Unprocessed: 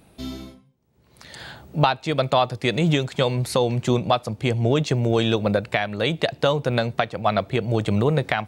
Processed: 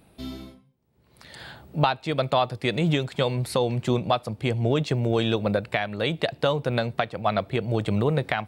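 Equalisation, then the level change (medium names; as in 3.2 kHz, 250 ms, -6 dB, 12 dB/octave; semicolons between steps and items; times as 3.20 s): peaking EQ 6.4 kHz -6.5 dB 0.42 oct; -3.0 dB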